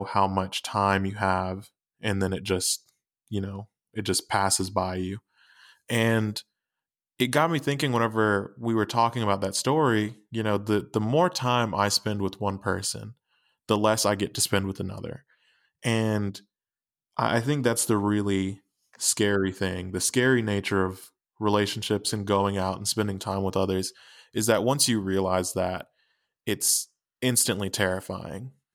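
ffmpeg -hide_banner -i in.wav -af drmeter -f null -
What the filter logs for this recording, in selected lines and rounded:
Channel 1: DR: 14.8
Overall DR: 14.8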